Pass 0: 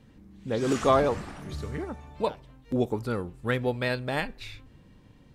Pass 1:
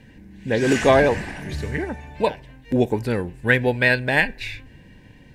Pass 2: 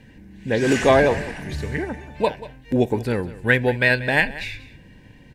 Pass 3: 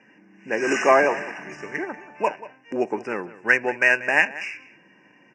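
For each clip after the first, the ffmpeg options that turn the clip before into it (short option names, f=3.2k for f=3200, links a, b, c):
-af "superequalizer=10b=0.355:11b=2.51:12b=2,volume=7dB"
-af "aecho=1:1:186:0.141"
-af "adynamicsmooth=sensitivity=4.5:basefreq=4.6k,asuperstop=centerf=3800:order=20:qfactor=1.8,highpass=f=240:w=0.5412,highpass=f=240:w=1.3066,equalizer=f=250:t=q:w=4:g=-9,equalizer=f=480:t=q:w=4:g=-7,equalizer=f=1.2k:t=q:w=4:g=7,equalizer=f=3.7k:t=q:w=4:g=9,equalizer=f=5.8k:t=q:w=4:g=4,lowpass=f=8.4k:w=0.5412,lowpass=f=8.4k:w=1.3066"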